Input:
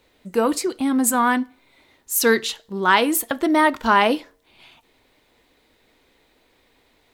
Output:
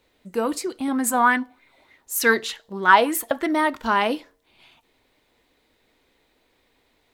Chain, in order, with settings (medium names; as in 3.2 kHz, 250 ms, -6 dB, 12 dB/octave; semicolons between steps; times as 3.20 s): 0.88–3.53 s: sweeping bell 3.3 Hz 600–2100 Hz +11 dB; trim -4.5 dB